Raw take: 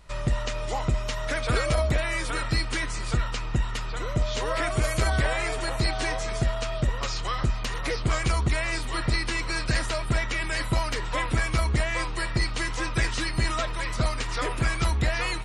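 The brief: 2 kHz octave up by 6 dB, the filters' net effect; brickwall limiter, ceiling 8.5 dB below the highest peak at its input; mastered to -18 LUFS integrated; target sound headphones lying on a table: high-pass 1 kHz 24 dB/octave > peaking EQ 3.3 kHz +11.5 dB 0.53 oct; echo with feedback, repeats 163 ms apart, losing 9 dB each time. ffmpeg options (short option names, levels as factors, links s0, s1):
-af "equalizer=f=2000:t=o:g=5,alimiter=limit=0.0841:level=0:latency=1,highpass=f=1000:w=0.5412,highpass=f=1000:w=1.3066,equalizer=f=3300:t=o:w=0.53:g=11.5,aecho=1:1:163|326|489|652:0.355|0.124|0.0435|0.0152,volume=3.55"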